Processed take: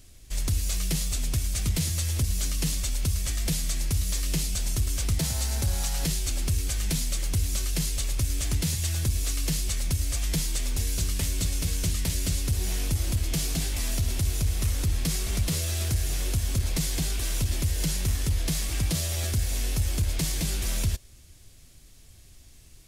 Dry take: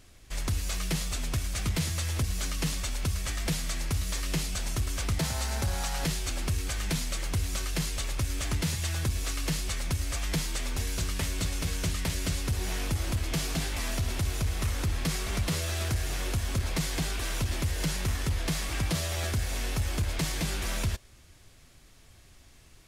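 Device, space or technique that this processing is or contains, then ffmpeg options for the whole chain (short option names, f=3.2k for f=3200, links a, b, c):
smiley-face EQ: -af "lowshelf=f=110:g=5.5,equalizer=f=1.2k:t=o:w=1.9:g=-6.5,highshelf=f=5.2k:g=7.5"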